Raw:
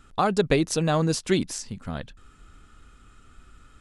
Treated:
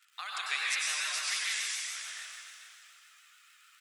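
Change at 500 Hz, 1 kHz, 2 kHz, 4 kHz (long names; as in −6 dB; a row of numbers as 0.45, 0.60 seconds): −34.5, −13.5, +1.5, +1.0 decibels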